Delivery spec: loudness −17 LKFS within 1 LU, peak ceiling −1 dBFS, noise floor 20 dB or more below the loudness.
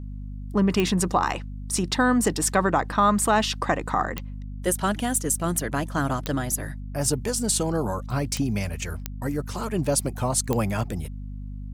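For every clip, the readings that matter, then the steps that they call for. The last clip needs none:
number of clicks 6; mains hum 50 Hz; hum harmonics up to 250 Hz; level of the hum −32 dBFS; integrated loudness −25.0 LKFS; sample peak −6.5 dBFS; target loudness −17.0 LKFS
→ click removal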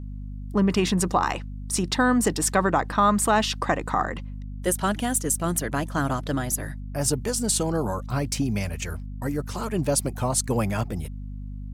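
number of clicks 0; mains hum 50 Hz; hum harmonics up to 250 Hz; level of the hum −32 dBFS
→ mains-hum notches 50/100/150/200/250 Hz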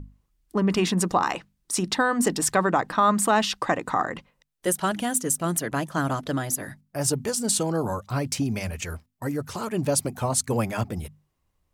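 mains hum none found; integrated loudness −25.5 LKFS; sample peak −7.5 dBFS; target loudness −17.0 LKFS
→ level +8.5 dB
brickwall limiter −1 dBFS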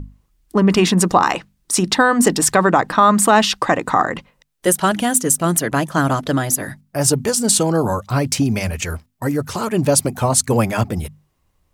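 integrated loudness −17.0 LKFS; sample peak −1.0 dBFS; background noise floor −65 dBFS

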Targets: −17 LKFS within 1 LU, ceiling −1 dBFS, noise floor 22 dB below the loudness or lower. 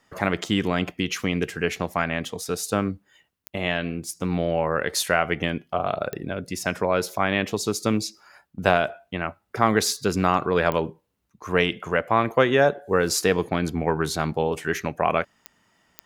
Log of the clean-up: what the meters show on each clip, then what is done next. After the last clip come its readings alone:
number of clicks 5; integrated loudness −24.5 LKFS; sample peak −4.0 dBFS; target loudness −17.0 LKFS
→ click removal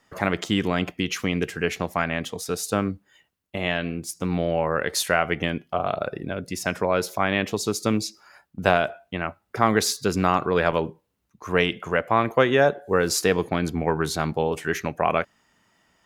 number of clicks 0; integrated loudness −24.5 LKFS; sample peak −4.0 dBFS; target loudness −17.0 LKFS
→ level +7.5 dB
brickwall limiter −1 dBFS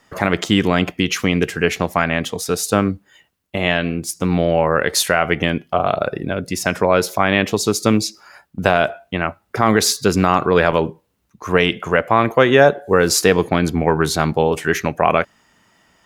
integrated loudness −17.5 LKFS; sample peak −1.0 dBFS; background noise floor −64 dBFS

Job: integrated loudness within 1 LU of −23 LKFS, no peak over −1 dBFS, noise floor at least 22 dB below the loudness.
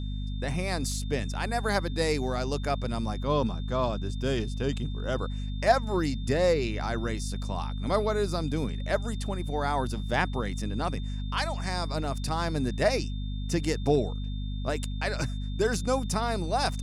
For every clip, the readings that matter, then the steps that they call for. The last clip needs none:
mains hum 50 Hz; hum harmonics up to 250 Hz; level of the hum −30 dBFS; interfering tone 3,600 Hz; level of the tone −48 dBFS; integrated loudness −29.5 LKFS; sample peak −10.0 dBFS; target loudness −23.0 LKFS
→ hum removal 50 Hz, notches 5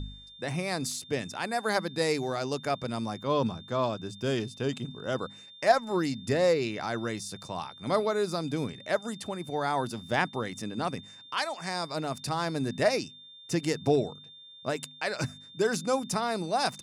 mains hum none found; interfering tone 3,600 Hz; level of the tone −48 dBFS
→ notch filter 3,600 Hz, Q 30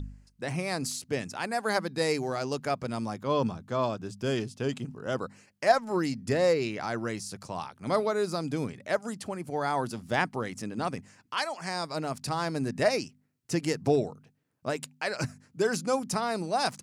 interfering tone none found; integrated loudness −30.5 LKFS; sample peak −10.0 dBFS; target loudness −23.0 LKFS
→ level +7.5 dB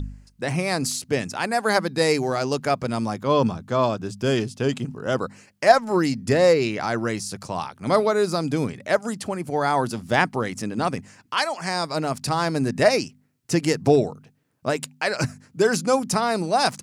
integrated loudness −23.0 LKFS; sample peak −2.5 dBFS; background noise floor −61 dBFS

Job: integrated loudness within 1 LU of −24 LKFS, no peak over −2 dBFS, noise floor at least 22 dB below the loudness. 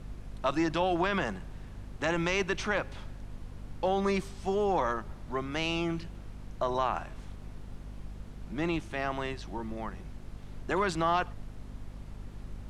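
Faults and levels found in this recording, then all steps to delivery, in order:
mains hum 50 Hz; hum harmonics up to 250 Hz; level of the hum −43 dBFS; background noise floor −46 dBFS; target noise floor −54 dBFS; integrated loudness −31.5 LKFS; sample peak −14.0 dBFS; target loudness −24.0 LKFS
→ mains-hum notches 50/100/150/200/250 Hz
noise reduction from a noise print 8 dB
level +7.5 dB

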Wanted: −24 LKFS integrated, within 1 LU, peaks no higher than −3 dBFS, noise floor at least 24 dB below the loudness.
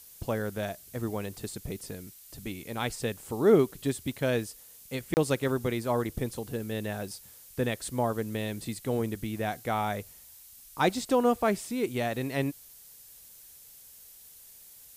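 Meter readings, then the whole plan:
number of dropouts 1; longest dropout 29 ms; background noise floor −52 dBFS; target noise floor −55 dBFS; integrated loudness −30.5 LKFS; sample peak −10.0 dBFS; target loudness −24.0 LKFS
→ repair the gap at 0:05.14, 29 ms
broadband denoise 6 dB, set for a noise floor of −52 dBFS
level +6.5 dB

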